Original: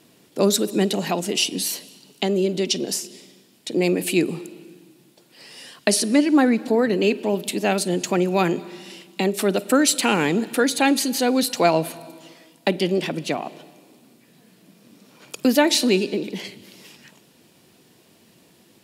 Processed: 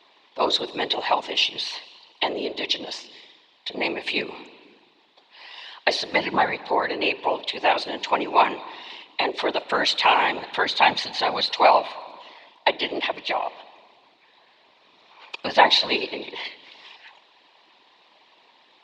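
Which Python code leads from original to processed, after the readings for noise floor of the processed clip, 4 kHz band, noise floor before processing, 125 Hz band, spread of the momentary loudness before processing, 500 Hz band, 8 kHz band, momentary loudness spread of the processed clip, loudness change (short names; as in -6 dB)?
-58 dBFS, +2.5 dB, -56 dBFS, -17.0 dB, 17 LU, -4.5 dB, -17.5 dB, 17 LU, -1.5 dB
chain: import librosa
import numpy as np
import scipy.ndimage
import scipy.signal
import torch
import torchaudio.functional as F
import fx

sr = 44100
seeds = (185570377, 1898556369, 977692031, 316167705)

y = fx.cabinet(x, sr, low_hz=470.0, low_slope=24, high_hz=4000.0, hz=(500.0, 950.0, 1400.0, 2000.0, 3800.0), db=(-9, 10, -5, 3, 6))
y = fx.whisperise(y, sr, seeds[0])
y = F.gain(torch.from_numpy(y), 2.0).numpy()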